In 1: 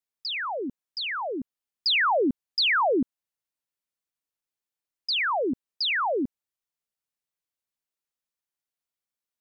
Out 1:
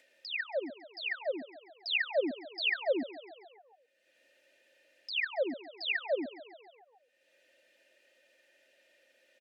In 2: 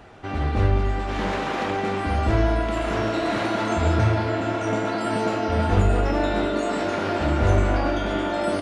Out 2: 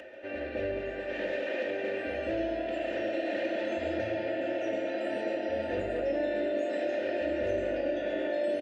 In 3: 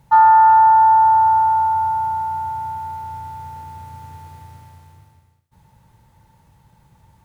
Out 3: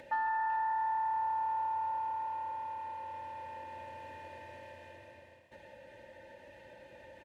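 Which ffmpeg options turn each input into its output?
-filter_complex "[0:a]asplit=3[a][b][c];[a]bandpass=f=530:t=q:w=8,volume=0dB[d];[b]bandpass=f=1.84k:t=q:w=8,volume=-6dB[e];[c]bandpass=f=2.48k:t=q:w=8,volume=-9dB[f];[d][e][f]amix=inputs=3:normalize=0,acompressor=mode=upward:threshold=-48dB:ratio=2.5,aecho=1:1:3.3:0.74,acrossover=split=400|3000[g][h][i];[h]acompressor=threshold=-38dB:ratio=6[j];[g][j][i]amix=inputs=3:normalize=0,asplit=2[k][l];[l]asplit=6[m][n][o][p][q][r];[m]adelay=138,afreqshift=37,volume=-16dB[s];[n]adelay=276,afreqshift=74,volume=-20dB[t];[o]adelay=414,afreqshift=111,volume=-24dB[u];[p]adelay=552,afreqshift=148,volume=-28dB[v];[q]adelay=690,afreqshift=185,volume=-32.1dB[w];[r]adelay=828,afreqshift=222,volume=-36.1dB[x];[s][t][u][v][w][x]amix=inputs=6:normalize=0[y];[k][y]amix=inputs=2:normalize=0,volume=5.5dB"

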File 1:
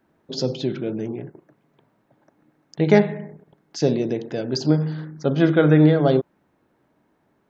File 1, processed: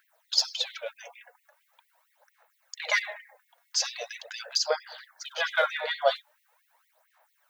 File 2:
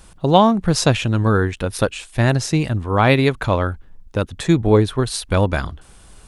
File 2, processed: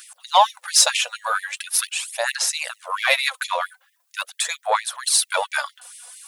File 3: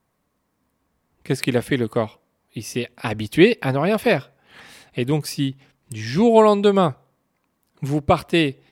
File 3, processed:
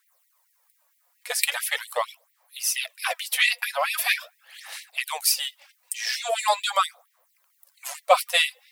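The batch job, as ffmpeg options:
-filter_complex "[0:a]aemphasis=mode=production:type=50kf,asplit=2[a][b];[b]acontrast=35,volume=1.5dB[c];[a][c]amix=inputs=2:normalize=0,aphaser=in_gain=1:out_gain=1:delay=4.2:decay=0.55:speed=0.42:type=sinusoidal,afftfilt=real='re*gte(b*sr/1024,470*pow(1900/470,0.5+0.5*sin(2*PI*4.4*pts/sr)))':imag='im*gte(b*sr/1024,470*pow(1900/470,0.5+0.5*sin(2*PI*4.4*pts/sr)))':win_size=1024:overlap=0.75,volume=-10dB"

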